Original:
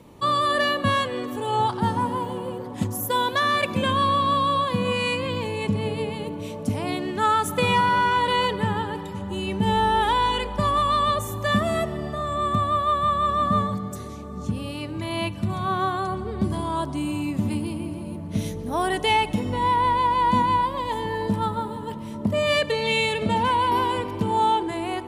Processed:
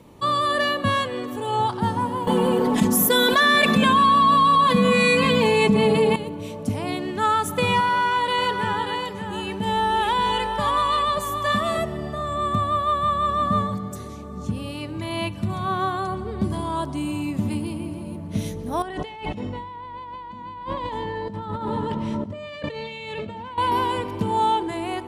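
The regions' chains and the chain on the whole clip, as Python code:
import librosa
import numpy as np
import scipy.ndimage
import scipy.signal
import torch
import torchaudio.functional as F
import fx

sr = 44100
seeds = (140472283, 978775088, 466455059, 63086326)

y = fx.chain(x, sr, fx.comb(ms=4.6, depth=0.85),
    fx.echo_single(ms=193, db=-16.0),
    fx.env_flatten(amount_pct=70), at=(2.27, 6.16))
y = fx.chain(y, sr, fx.low_shelf(hz=240.0, db=-8.5),
    fx.echo_single(ms=583, db=-6.0), at=(7.8, 11.78))
y = fx.chain(y, sr, fx.over_compress(threshold_db=-32.0, ratio=-1.0),
    fx.air_absorb(metres=91.0),
    fx.echo_single(ms=124, db=-21.0), at=(18.82, 23.58))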